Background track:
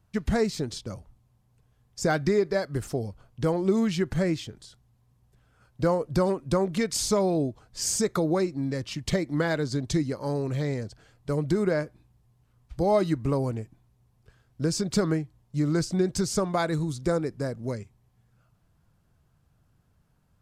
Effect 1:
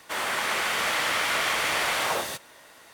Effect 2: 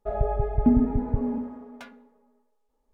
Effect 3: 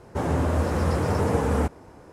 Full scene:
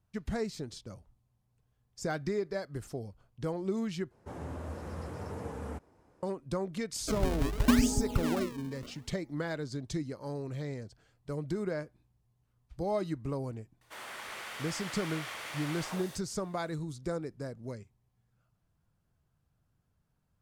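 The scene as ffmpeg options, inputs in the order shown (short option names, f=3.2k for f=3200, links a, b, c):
-filter_complex "[0:a]volume=-9.5dB[a];[2:a]acrusher=samples=37:mix=1:aa=0.000001:lfo=1:lforange=59.2:lforate=0.77[b];[a]asplit=2[c][d];[c]atrim=end=4.114[e];[3:a]atrim=end=2.12,asetpts=PTS-STARTPTS,volume=-17dB[f];[d]atrim=start=6.226[g];[b]atrim=end=2.93,asetpts=PTS-STARTPTS,volume=-5dB,afade=t=in:d=0.004:c=hsin,afade=t=out:st=2.926:d=0.004:c=hsin,adelay=7020[h];[1:a]atrim=end=2.93,asetpts=PTS-STARTPTS,volume=-16dB,afade=t=in:d=0.004:c=hsin,afade=t=out:st=2.926:d=0.004:c=hsin,adelay=13810[i];[e][f]acrossfade=d=0.004:c1=hsin:c2=hsin[j];[j][g]acrossfade=d=0.004:c1=hsin:c2=hsin[k];[k][h][i]amix=inputs=3:normalize=0"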